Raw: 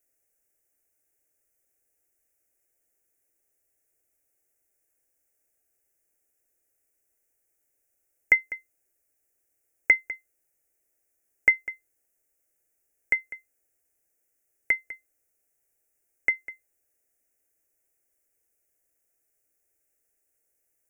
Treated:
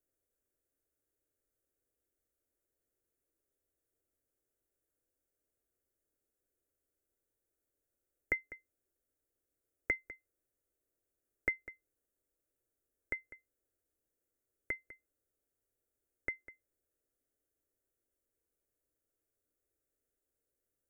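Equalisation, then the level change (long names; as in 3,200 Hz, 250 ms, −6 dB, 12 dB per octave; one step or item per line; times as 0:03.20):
parametric band 810 Hz −15 dB 0.69 octaves
high shelf with overshoot 1,600 Hz −13 dB, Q 1.5
−1.0 dB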